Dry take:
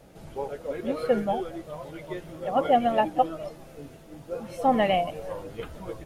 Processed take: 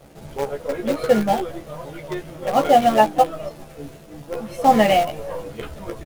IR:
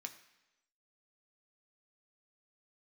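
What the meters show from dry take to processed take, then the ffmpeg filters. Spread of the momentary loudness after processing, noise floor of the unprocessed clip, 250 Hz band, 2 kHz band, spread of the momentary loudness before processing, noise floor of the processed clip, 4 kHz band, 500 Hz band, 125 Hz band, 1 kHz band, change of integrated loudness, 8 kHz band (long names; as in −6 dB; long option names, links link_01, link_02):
20 LU, −49 dBFS, +6.5 dB, +8.0 dB, 18 LU, −43 dBFS, +8.0 dB, +6.5 dB, +7.0 dB, +7.5 dB, +8.0 dB, can't be measured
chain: -filter_complex "[0:a]asplit=2[link_01][link_02];[link_02]acrusher=bits=5:dc=4:mix=0:aa=0.000001,volume=-6dB[link_03];[link_01][link_03]amix=inputs=2:normalize=0,asplit=2[link_04][link_05];[link_05]adelay=14,volume=-4dB[link_06];[link_04][link_06]amix=inputs=2:normalize=0,volume=2dB"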